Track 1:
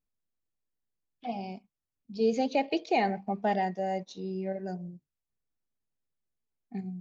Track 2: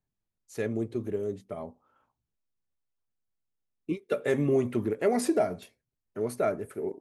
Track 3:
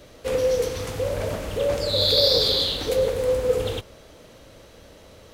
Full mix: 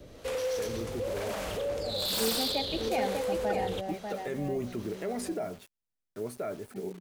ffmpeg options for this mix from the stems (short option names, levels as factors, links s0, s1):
-filter_complex "[0:a]volume=0.501,asplit=2[s0][s1];[s1]volume=0.531[s2];[1:a]acrusher=bits=7:mix=0:aa=0.000001,volume=0.562,asplit=2[s3][s4];[2:a]acrossover=split=530[s5][s6];[s5]aeval=exprs='val(0)*(1-0.7/2+0.7/2*cos(2*PI*1.1*n/s))':c=same[s7];[s6]aeval=exprs='val(0)*(1-0.7/2-0.7/2*cos(2*PI*1.1*n/s))':c=same[s8];[s7][s8]amix=inputs=2:normalize=0,acrossover=split=390|3000[s9][s10][s11];[s9]acompressor=threshold=0.0112:ratio=6[s12];[s12][s10][s11]amix=inputs=3:normalize=0,volume=1.12[s13];[s4]apad=whole_len=309133[s14];[s0][s14]sidechaincompress=threshold=0.0178:ratio=8:attack=16:release=607[s15];[s3][s13]amix=inputs=2:normalize=0,aeval=exprs='0.1*(abs(mod(val(0)/0.1+3,4)-2)-1)':c=same,alimiter=level_in=1.26:limit=0.0631:level=0:latency=1:release=25,volume=0.794,volume=1[s16];[s2]aecho=0:1:594:1[s17];[s15][s16][s17]amix=inputs=3:normalize=0"